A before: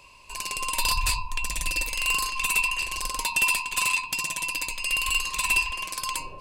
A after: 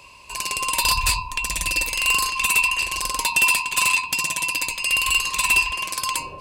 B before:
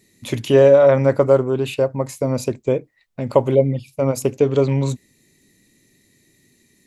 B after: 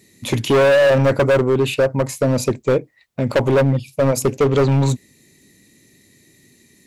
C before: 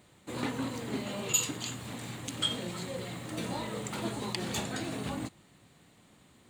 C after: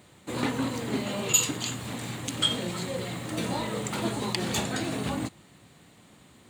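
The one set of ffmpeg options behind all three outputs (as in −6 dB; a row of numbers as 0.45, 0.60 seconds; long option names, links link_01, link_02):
-af "highpass=44,asoftclip=type=hard:threshold=-16.5dB,volume=5.5dB"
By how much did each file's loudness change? +5.5, +0.5, +5.5 LU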